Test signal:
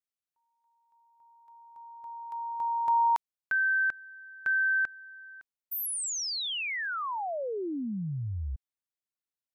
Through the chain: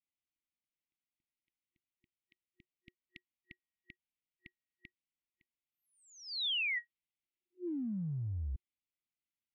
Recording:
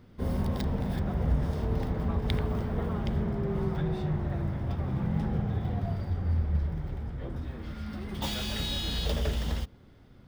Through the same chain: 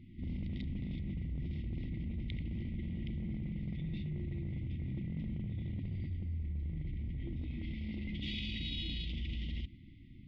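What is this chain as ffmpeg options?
-af "afftfilt=real='re*(1-between(b*sr/4096,360,1900))':imag='im*(1-between(b*sr/4096,360,1900))':win_size=4096:overlap=0.75,lowpass=f=3200:w=0.5412,lowpass=f=3200:w=1.3066,areverse,acompressor=threshold=0.0158:ratio=8:attack=1.4:release=71:knee=1:detection=peak,areverse,adynamicequalizer=threshold=0.00126:dfrequency=1800:dqfactor=0.7:tfrequency=1800:tqfactor=0.7:attack=5:release=100:ratio=0.45:range=2:mode=boostabove:tftype=highshelf,volume=1.12"

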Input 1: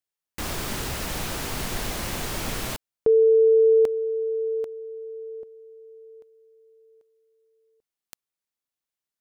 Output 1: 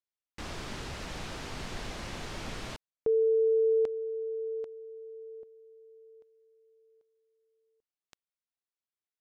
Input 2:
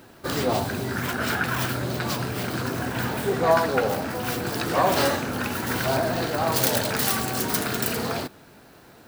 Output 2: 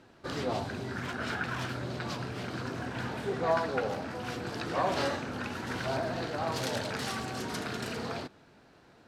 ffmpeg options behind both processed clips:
-af "lowpass=5800,volume=0.376"

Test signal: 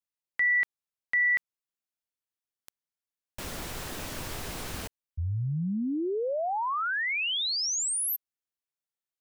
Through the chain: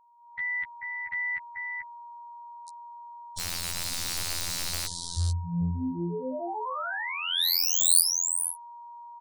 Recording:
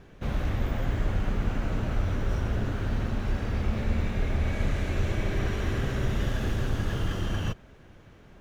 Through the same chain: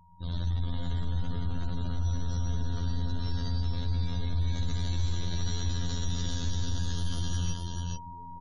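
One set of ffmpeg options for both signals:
-filter_complex "[0:a]afftdn=nr=13:nf=-50,aeval=exprs='val(0)+0.0141*sin(2*PI*920*n/s)':c=same,highshelf=f=3200:t=q:w=3:g=8.5,dynaudnorm=f=200:g=3:m=5.31,bass=f=250:g=12,treble=f=4000:g=-2,aresample=22050,aresample=44100,afftfilt=real='hypot(re,im)*cos(PI*b)':imag='0':win_size=2048:overlap=0.75,asplit=2[s0][s1];[s1]aecho=0:1:437:0.447[s2];[s0][s2]amix=inputs=2:normalize=0,crystalizer=i=6.5:c=0,aeval=exprs='6.68*(cos(1*acos(clip(val(0)/6.68,-1,1)))-cos(1*PI/2))+2.99*(cos(3*acos(clip(val(0)/6.68,-1,1)))-cos(3*PI/2))':c=same,acompressor=threshold=0.0398:ratio=1.5:attack=0.79:release=65:knee=1:detection=peak,afftfilt=real='re*gte(hypot(re,im),0.00708)':imag='im*gte(hypot(re,im),0.00708)':win_size=1024:overlap=0.75,volume=0.531"

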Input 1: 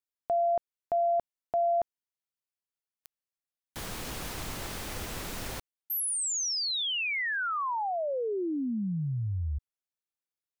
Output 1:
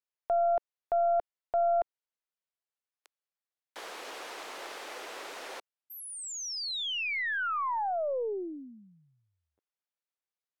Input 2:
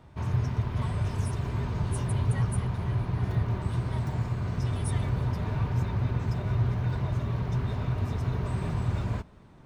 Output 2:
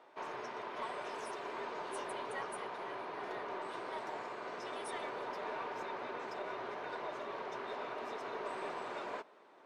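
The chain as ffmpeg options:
-af "highpass=f=400:w=0.5412,highpass=f=400:w=1.3066,aemphasis=mode=reproduction:type=50fm,aeval=exprs='0.0841*(cos(1*acos(clip(val(0)/0.0841,-1,1)))-cos(1*PI/2))+0.00668*(cos(2*acos(clip(val(0)/0.0841,-1,1)))-cos(2*PI/2))':c=same"

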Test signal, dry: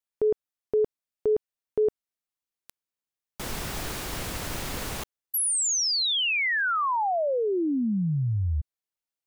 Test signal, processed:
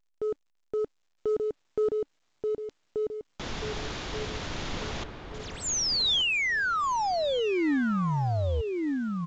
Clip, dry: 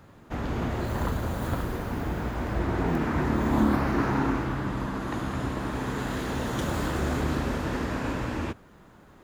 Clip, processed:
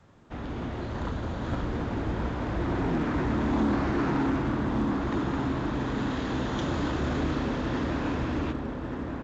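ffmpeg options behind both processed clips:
-filter_complex "[0:a]asplit=2[s0][s1];[s1]adelay=1182,lowpass=f=1600:p=1,volume=0.596,asplit=2[s2][s3];[s3]adelay=1182,lowpass=f=1600:p=1,volume=0.4,asplit=2[s4][s5];[s5]adelay=1182,lowpass=f=1600:p=1,volume=0.4,asplit=2[s6][s7];[s7]adelay=1182,lowpass=f=1600:p=1,volume=0.4,asplit=2[s8][s9];[s9]adelay=1182,lowpass=f=1600:p=1,volume=0.4[s10];[s0][s2][s4][s6][s8][s10]amix=inputs=6:normalize=0,adynamicequalizer=threshold=0.01:dfrequency=290:dqfactor=3.4:tfrequency=290:tqfactor=3.4:attack=5:release=100:ratio=0.333:range=2:mode=boostabove:tftype=bell,asplit=2[s11][s12];[s12]acrusher=bits=5:mode=log:mix=0:aa=0.000001,volume=0.562[s13];[s11][s13]amix=inputs=2:normalize=0,adynamicsmooth=sensitivity=7.5:basefreq=4300,equalizer=f=3500:t=o:w=0.46:g=4,aresample=16000,asoftclip=type=tanh:threshold=0.188,aresample=44100,dynaudnorm=f=110:g=21:m=1.58,volume=0.355" -ar 16000 -c:a pcm_alaw

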